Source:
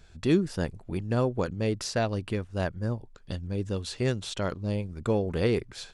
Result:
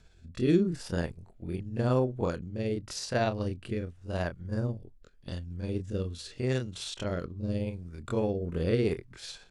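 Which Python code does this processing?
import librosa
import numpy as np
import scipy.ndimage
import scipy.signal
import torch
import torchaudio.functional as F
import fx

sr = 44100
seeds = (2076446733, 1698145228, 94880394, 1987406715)

y = fx.stretch_grains(x, sr, factor=1.6, grain_ms=124.0)
y = fx.rotary(y, sr, hz=0.85)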